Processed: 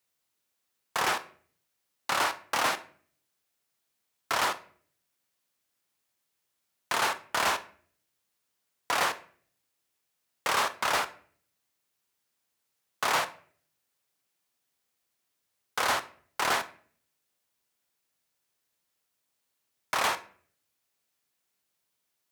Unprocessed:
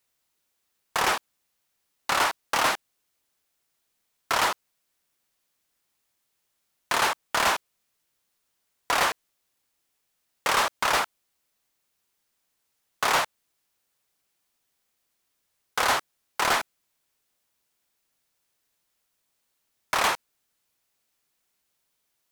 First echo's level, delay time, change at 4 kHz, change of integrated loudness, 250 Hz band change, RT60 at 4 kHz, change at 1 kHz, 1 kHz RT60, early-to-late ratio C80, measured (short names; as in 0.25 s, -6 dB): none, none, -4.0 dB, -3.5 dB, -3.5 dB, 0.35 s, -3.5 dB, 0.45 s, 20.5 dB